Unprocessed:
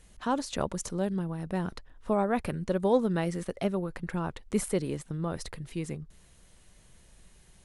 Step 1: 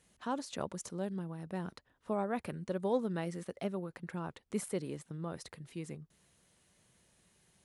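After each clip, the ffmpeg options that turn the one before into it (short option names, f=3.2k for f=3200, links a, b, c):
-af "highpass=110,volume=-7.5dB"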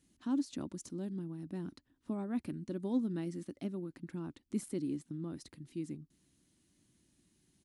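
-af "firequalizer=gain_entry='entry(190,0);entry(290,12);entry(450,-11);entry(4500,-2);entry(11000,-4)':delay=0.05:min_phase=1,volume=-1.5dB"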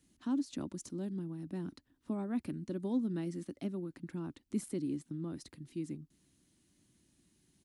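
-filter_complex "[0:a]acrossover=split=270[a][b];[b]acompressor=threshold=-38dB:ratio=3[c];[a][c]amix=inputs=2:normalize=0,volume=1dB"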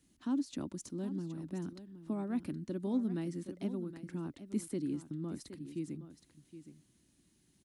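-af "aecho=1:1:769:0.237"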